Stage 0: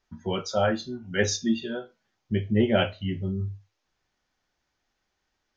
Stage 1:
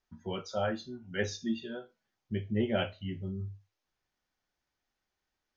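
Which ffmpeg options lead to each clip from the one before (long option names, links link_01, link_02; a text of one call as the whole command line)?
ffmpeg -i in.wav -filter_complex "[0:a]acrossover=split=4900[link_01][link_02];[link_02]acompressor=threshold=-42dB:ratio=4:attack=1:release=60[link_03];[link_01][link_03]amix=inputs=2:normalize=0,volume=-8dB" out.wav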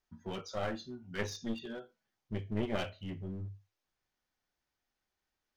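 ffmpeg -i in.wav -af "aeval=exprs='clip(val(0),-1,0.0126)':channel_layout=same,volume=-2dB" out.wav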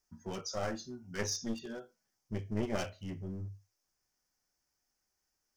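ffmpeg -i in.wav -af "highshelf=frequency=4500:width_type=q:width=3:gain=6" out.wav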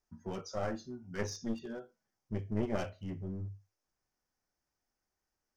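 ffmpeg -i in.wav -af "highshelf=frequency=2700:gain=-11,volume=1dB" out.wav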